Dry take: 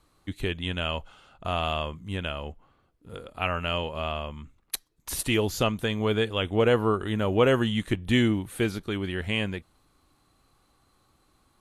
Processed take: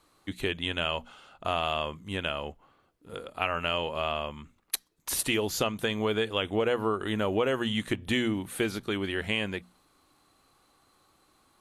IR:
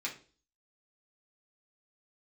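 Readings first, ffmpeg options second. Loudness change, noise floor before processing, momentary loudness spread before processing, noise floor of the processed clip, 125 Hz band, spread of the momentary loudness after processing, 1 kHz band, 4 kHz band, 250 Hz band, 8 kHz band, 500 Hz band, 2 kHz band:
-2.5 dB, -67 dBFS, 15 LU, -67 dBFS, -8.0 dB, 9 LU, -1.0 dB, 0.0 dB, -4.0 dB, +2.0 dB, -3.0 dB, -0.5 dB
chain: -af "lowshelf=f=140:g=-12,bandreject=f=60:t=h:w=6,bandreject=f=120:t=h:w=6,bandreject=f=180:t=h:w=6,bandreject=f=240:t=h:w=6,acompressor=threshold=0.0501:ratio=5,volume=1.33"

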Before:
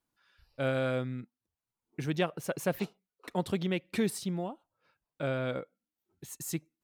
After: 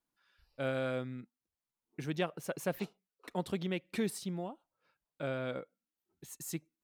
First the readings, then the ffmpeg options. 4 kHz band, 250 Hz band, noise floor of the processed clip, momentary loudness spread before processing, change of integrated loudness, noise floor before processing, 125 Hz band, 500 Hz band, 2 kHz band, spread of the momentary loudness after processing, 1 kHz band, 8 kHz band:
-4.0 dB, -4.5 dB, under -85 dBFS, 16 LU, -4.5 dB, under -85 dBFS, -5.5 dB, -4.0 dB, -4.0 dB, 16 LU, -4.0 dB, -4.0 dB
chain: -af "equalizer=f=100:t=o:w=0.51:g=-8.5,volume=0.631"

